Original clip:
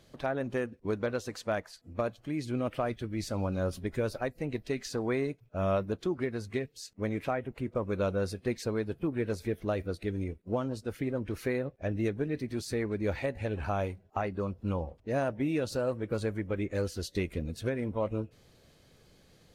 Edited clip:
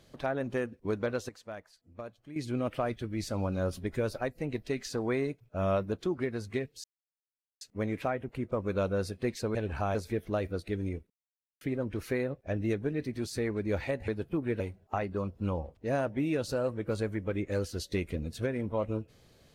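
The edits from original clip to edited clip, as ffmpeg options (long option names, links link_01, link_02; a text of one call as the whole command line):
ffmpeg -i in.wav -filter_complex "[0:a]asplit=10[link_01][link_02][link_03][link_04][link_05][link_06][link_07][link_08][link_09][link_10];[link_01]atrim=end=1.292[link_11];[link_02]atrim=start=1.288:end=2.362,asetpts=PTS-STARTPTS,volume=-11dB[link_12];[link_03]atrim=start=2.358:end=6.84,asetpts=PTS-STARTPTS,afade=type=out:start_time=4.478:duration=0.004:curve=hsin,apad=pad_dur=0.77[link_13];[link_04]atrim=start=6.84:end=8.782,asetpts=PTS-STARTPTS,afade=type=in:duration=0.004:curve=hsin[link_14];[link_05]atrim=start=13.428:end=13.832[link_15];[link_06]atrim=start=9.298:end=10.45,asetpts=PTS-STARTPTS,afade=type=out:start_time=1.148:duration=0.004:curve=hsin[link_16];[link_07]atrim=start=10.45:end=10.96,asetpts=PTS-STARTPTS,volume=0[link_17];[link_08]atrim=start=10.96:end=13.432,asetpts=PTS-STARTPTS,afade=type=in:duration=0.004:curve=hsin[link_18];[link_09]atrim=start=8.778:end=9.302[link_19];[link_10]atrim=start=13.828[link_20];[link_11][link_12]acrossfade=duration=0.004:curve1=hsin:curve2=hsin[link_21];[link_13][link_14]concat=n=2:v=0:a=1[link_22];[link_21][link_22]acrossfade=duration=0.004:curve1=hsin:curve2=hsin[link_23];[link_23][link_15]acrossfade=duration=0.004:curve1=hsin:curve2=hsin[link_24];[link_16][link_17][link_18]concat=n=3:v=0:a=1[link_25];[link_24][link_25]acrossfade=duration=0.004:curve1=hsin:curve2=hsin[link_26];[link_26][link_19]acrossfade=duration=0.004:curve1=hsin:curve2=hsin[link_27];[link_27][link_20]acrossfade=duration=0.004:curve1=hsin:curve2=hsin" out.wav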